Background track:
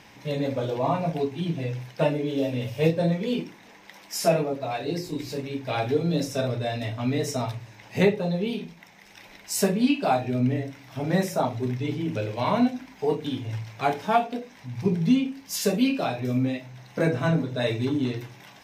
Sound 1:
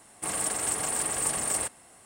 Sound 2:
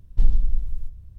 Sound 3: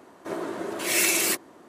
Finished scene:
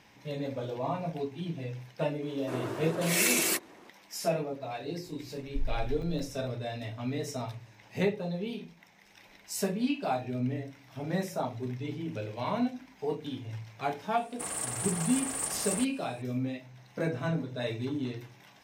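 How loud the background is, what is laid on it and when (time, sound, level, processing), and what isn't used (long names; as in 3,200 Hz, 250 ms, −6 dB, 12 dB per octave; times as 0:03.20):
background track −8 dB
0:02.22: mix in 3 −4 dB
0:05.37: mix in 2 −15.5 dB + regular buffer underruns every 0.17 s zero
0:14.17: mix in 1 −5.5 dB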